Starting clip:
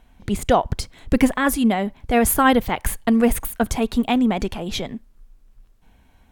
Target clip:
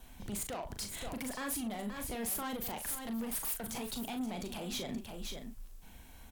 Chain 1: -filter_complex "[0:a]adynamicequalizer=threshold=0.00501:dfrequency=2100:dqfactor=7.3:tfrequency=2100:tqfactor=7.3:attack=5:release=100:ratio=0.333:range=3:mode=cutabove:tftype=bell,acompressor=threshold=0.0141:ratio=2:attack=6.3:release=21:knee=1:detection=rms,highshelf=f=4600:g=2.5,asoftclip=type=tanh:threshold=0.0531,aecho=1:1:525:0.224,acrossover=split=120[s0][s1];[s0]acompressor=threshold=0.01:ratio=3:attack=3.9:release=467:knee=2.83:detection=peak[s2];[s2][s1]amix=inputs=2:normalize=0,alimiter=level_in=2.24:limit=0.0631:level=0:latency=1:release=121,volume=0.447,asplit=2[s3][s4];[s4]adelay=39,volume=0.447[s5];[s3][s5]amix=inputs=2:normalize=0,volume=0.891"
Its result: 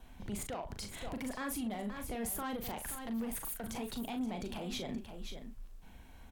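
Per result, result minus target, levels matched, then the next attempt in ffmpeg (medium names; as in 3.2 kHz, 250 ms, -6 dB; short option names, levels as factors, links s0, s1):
compression: peak gain reduction +4 dB; 8 kHz band -2.5 dB
-filter_complex "[0:a]adynamicequalizer=threshold=0.00501:dfrequency=2100:dqfactor=7.3:tfrequency=2100:tqfactor=7.3:attack=5:release=100:ratio=0.333:range=3:mode=cutabove:tftype=bell,acompressor=threshold=0.0355:ratio=2:attack=6.3:release=21:knee=1:detection=rms,highshelf=f=4600:g=2.5,asoftclip=type=tanh:threshold=0.0531,aecho=1:1:525:0.224,acrossover=split=120[s0][s1];[s0]acompressor=threshold=0.01:ratio=3:attack=3.9:release=467:knee=2.83:detection=peak[s2];[s2][s1]amix=inputs=2:normalize=0,alimiter=level_in=2.24:limit=0.0631:level=0:latency=1:release=121,volume=0.447,asplit=2[s3][s4];[s4]adelay=39,volume=0.447[s5];[s3][s5]amix=inputs=2:normalize=0,volume=0.891"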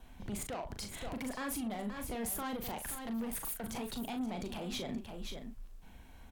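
8 kHz band -2.0 dB
-filter_complex "[0:a]adynamicequalizer=threshold=0.00501:dfrequency=2100:dqfactor=7.3:tfrequency=2100:tqfactor=7.3:attack=5:release=100:ratio=0.333:range=3:mode=cutabove:tftype=bell,acompressor=threshold=0.0355:ratio=2:attack=6.3:release=21:knee=1:detection=rms,highshelf=f=4600:g=14,asoftclip=type=tanh:threshold=0.0531,aecho=1:1:525:0.224,acrossover=split=120[s0][s1];[s0]acompressor=threshold=0.01:ratio=3:attack=3.9:release=467:knee=2.83:detection=peak[s2];[s2][s1]amix=inputs=2:normalize=0,alimiter=level_in=2.24:limit=0.0631:level=0:latency=1:release=121,volume=0.447,asplit=2[s3][s4];[s4]adelay=39,volume=0.447[s5];[s3][s5]amix=inputs=2:normalize=0,volume=0.891"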